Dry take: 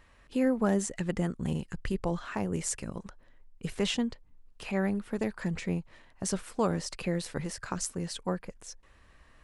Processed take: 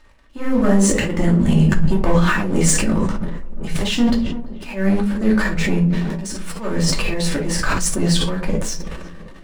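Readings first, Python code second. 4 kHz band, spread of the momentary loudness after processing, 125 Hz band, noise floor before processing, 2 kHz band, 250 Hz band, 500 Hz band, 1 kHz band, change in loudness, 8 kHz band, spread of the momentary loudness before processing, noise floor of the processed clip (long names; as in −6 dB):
+14.5 dB, 14 LU, +16.0 dB, −60 dBFS, +16.0 dB, +14.0 dB, +10.0 dB, +11.5 dB, +13.5 dB, +14.5 dB, 13 LU, −38 dBFS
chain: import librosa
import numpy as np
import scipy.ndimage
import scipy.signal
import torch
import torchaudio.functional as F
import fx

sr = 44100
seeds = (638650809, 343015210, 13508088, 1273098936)

y = fx.high_shelf(x, sr, hz=6300.0, db=-4.0)
y = fx.rider(y, sr, range_db=4, speed_s=0.5)
y = fx.leveller(y, sr, passes=3)
y = fx.auto_swell(y, sr, attack_ms=184.0)
y = fx.echo_tape(y, sr, ms=339, feedback_pct=89, wet_db=-19.5, lp_hz=1100.0, drive_db=18.0, wow_cents=9)
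y = fx.room_shoebox(y, sr, seeds[0], volume_m3=220.0, walls='furnished', distance_m=2.6)
y = fx.sustainer(y, sr, db_per_s=33.0)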